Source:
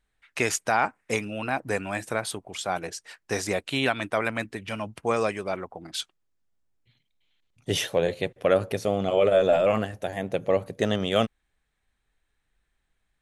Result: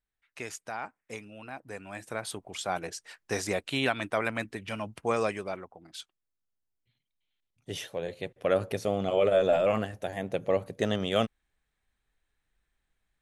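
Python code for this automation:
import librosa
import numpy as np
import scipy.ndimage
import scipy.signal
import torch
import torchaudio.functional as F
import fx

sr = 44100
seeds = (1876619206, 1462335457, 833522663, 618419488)

y = fx.gain(x, sr, db=fx.line((1.72, -14.0), (2.43, -3.0), (5.37, -3.0), (5.77, -11.0), (8.01, -11.0), (8.61, -3.5)))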